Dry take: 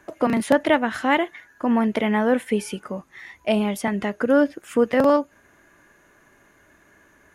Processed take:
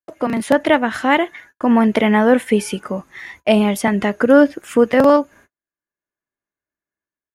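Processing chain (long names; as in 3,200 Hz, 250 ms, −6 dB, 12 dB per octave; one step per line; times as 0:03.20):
noise gate −48 dBFS, range −47 dB
automatic gain control gain up to 11 dB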